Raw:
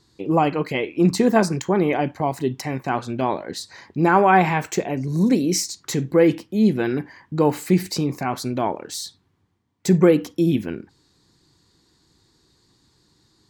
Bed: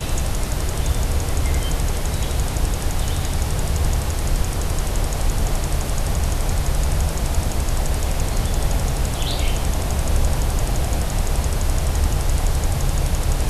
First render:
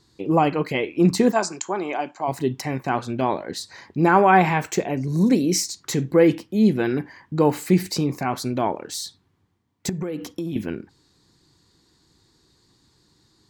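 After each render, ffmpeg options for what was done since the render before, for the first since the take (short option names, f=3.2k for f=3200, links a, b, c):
-filter_complex "[0:a]asplit=3[a][b][c];[a]afade=t=out:st=1.31:d=0.02[d];[b]highpass=460,equalizer=f=490:t=q:w=4:g=-10,equalizer=f=1.9k:t=q:w=4:g=-9,equalizer=f=3.3k:t=q:w=4:g=-4,equalizer=f=7.3k:t=q:w=4:g=9,lowpass=f=7.6k:w=0.5412,lowpass=f=7.6k:w=1.3066,afade=t=in:st=1.31:d=0.02,afade=t=out:st=2.27:d=0.02[e];[c]afade=t=in:st=2.27:d=0.02[f];[d][e][f]amix=inputs=3:normalize=0,asettb=1/sr,asplit=3[g][h][i];[g]atrim=end=9.894[j];[h]atrim=start=9.89:end=10.56,asetpts=PTS-STARTPTS,afade=t=in:d=0.004:c=qsin,afade=t=out:st=0.666:d=0.004:c=qsin,acompressor=threshold=-24dB:ratio=16:attack=3.2:release=140:knee=1:detection=peak[k];[i]atrim=start=10.556[l];[j][k]acrossfade=d=0.004:c1=hsin:c2=qsin[m];[m][l]acrossfade=d=0.004:c1=qsin:c2=hsin"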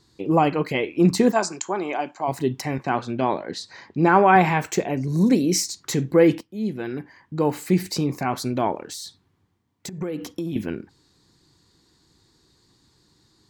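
-filter_complex "[0:a]asettb=1/sr,asplit=3[a][b][c];[a]atrim=end=2.784[d];[b]atrim=start=2.78:end=4.36,asetpts=PTS-STARTPTS,afade=t=in:d=0.004:c=qsin,afade=t=out:st=1.576:d=0.004:c=qsin,highpass=100,lowpass=6.1k[e];[c]atrim=start=4.356[f];[d][e]acrossfade=d=0.004:c1=hsin:c2=qsin[g];[g][f]acrossfade=d=0.004:c1=qsin:c2=hsin,asettb=1/sr,asplit=3[h][i][j];[h]atrim=end=8.814[k];[i]atrim=start=8.81:end=10.01,asetpts=PTS-STARTPTS,afade=t=in:d=0.004:c=qsin,afade=t=out:st=1.196:d=0.004:c=qsin,acompressor=threshold=-31dB:ratio=6:attack=3.2:release=140:knee=1:detection=peak[l];[j]atrim=start=10.006[m];[k][l]acrossfade=d=0.004:c1=hsin:c2=qsin[n];[n][m]acrossfade=d=0.004:c1=qsin:c2=hsin,asplit=2[o][p];[o]atrim=end=6.41,asetpts=PTS-STARTPTS,afade=t=out:st=6.406:d=0.004:c=hsin:silence=0.237137[q];[p]atrim=start=6.41,asetpts=PTS-STARTPTS,afade=t=in:d=1.82:silence=0.237137[r];[q][r]concat=n=2:v=0:a=1"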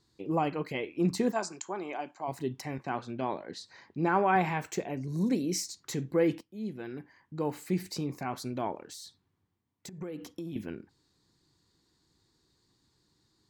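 -af "volume=-10.5dB"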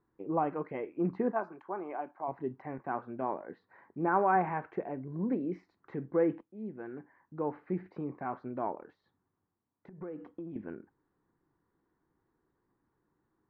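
-af "lowpass=f=1.6k:w=0.5412,lowpass=f=1.6k:w=1.3066,equalizer=f=85:w=0.5:g=-9.5"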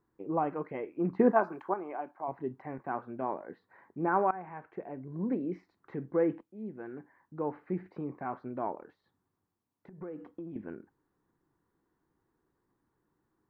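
-filter_complex "[0:a]asettb=1/sr,asplit=3[a][b][c];[a]atrim=end=1.194[d];[b]atrim=start=1.19:end=1.74,asetpts=PTS-STARTPTS,afade=t=in:d=0.004:c=qsin,afade=t=out:st=0.546:d=0.004:c=qsin,acontrast=89[e];[c]atrim=start=1.736[f];[d][e]acrossfade=d=0.004:c1=hsin:c2=qsin[g];[g][f]acrossfade=d=0.004:c1=qsin:c2=hsin,asplit=2[h][i];[h]atrim=end=4.31,asetpts=PTS-STARTPTS,afade=t=out:st=4.306:d=0.004:c=hsin:silence=0.11885[j];[i]atrim=start=4.31,asetpts=PTS-STARTPTS,afade=t=in:d=0.97:silence=0.11885[k];[j][k]concat=n=2:v=0:a=1"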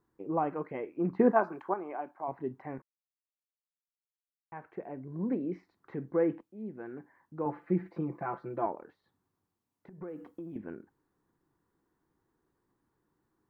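-filter_complex "[0:a]asettb=1/sr,asplit=3[a][b][c];[a]atrim=end=7.454[d];[b]atrim=start=7.45:end=8.66,asetpts=PTS-STARTPTS,afade=t=in:d=0.004:c=qsin,afade=t=out:st=1.206:d=0.004:c=qsin,aecho=1:1:5.9:0.98,atrim=end_sample=53361[e];[c]atrim=start=8.656[f];[d][e]acrossfade=d=0.004:c1=hsin:c2=qsin[g];[g][f]acrossfade=d=0.004:c1=qsin:c2=hsin,asettb=1/sr,asplit=3[h][i][j];[h]atrim=end=10.084[k];[i]atrim=start=10.08:end=10.58,asetpts=PTS-STARTPTS,afade=t=in:d=0.004:c=qsin,afade=t=out:st=0.496:d=0.004:c=qsin,aemphasis=mode=production:type=cd[l];[j]atrim=start=10.576[m];[k][l]acrossfade=d=0.004:c1=hsin:c2=qsin[n];[n][m]acrossfade=d=0.004:c1=qsin:c2=hsin,asplit=3[o][p][q];[o]atrim=end=2.82,asetpts=PTS-STARTPTS,afade=t=out:st=2.816:d=0.004:c=hsin[r];[p]atrim=start=2.82:end=4.52,asetpts=PTS-STARTPTS,volume=0[s];[q]atrim=start=4.52,asetpts=PTS-STARTPTS,afade=t=in:d=0.004:c=hsin[t];[r][s][t]concat=n=3:v=0:a=1"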